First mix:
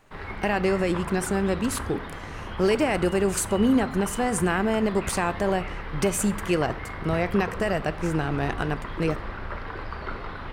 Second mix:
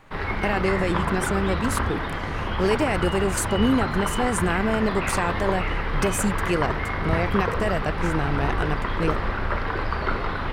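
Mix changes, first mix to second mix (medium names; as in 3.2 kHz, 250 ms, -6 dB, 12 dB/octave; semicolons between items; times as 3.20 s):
speech: send off; background +8.5 dB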